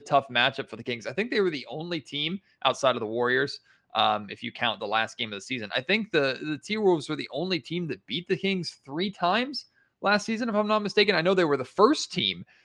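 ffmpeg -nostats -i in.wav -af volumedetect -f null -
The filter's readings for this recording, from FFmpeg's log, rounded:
mean_volume: -27.1 dB
max_volume: -5.6 dB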